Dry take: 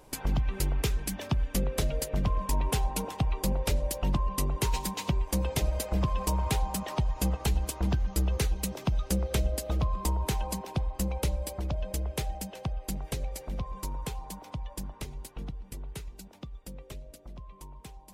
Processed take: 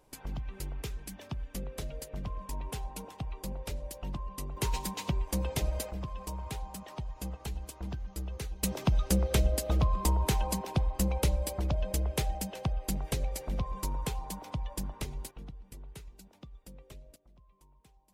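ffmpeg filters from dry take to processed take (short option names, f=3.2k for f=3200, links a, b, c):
-af "asetnsamples=n=441:p=0,asendcmd='4.57 volume volume -3dB;5.91 volume volume -10.5dB;8.63 volume volume 1.5dB;15.31 volume volume -7dB;17.16 volume volume -16dB',volume=-10dB"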